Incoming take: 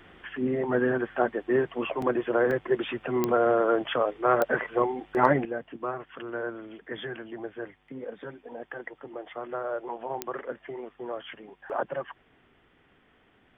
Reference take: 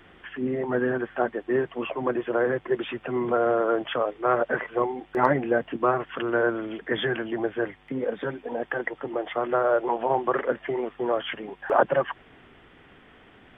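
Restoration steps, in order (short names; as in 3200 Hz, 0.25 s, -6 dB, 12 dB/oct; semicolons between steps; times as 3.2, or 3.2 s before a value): de-click; interpolate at 2.02/2.51, 3.1 ms; gain 0 dB, from 5.45 s +10 dB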